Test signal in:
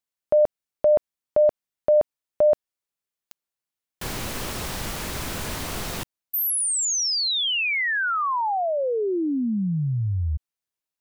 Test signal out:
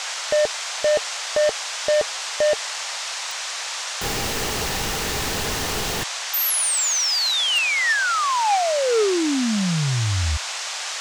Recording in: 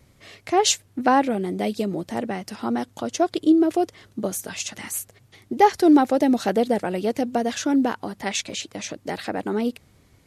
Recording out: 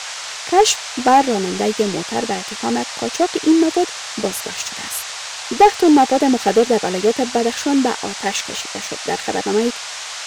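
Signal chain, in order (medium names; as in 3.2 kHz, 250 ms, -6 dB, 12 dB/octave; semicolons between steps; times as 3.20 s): small resonant body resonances 440/800/1800/2800 Hz, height 9 dB, ringing for 50 ms; waveshaping leveller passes 2; band noise 620–7300 Hz -25 dBFS; trim -4.5 dB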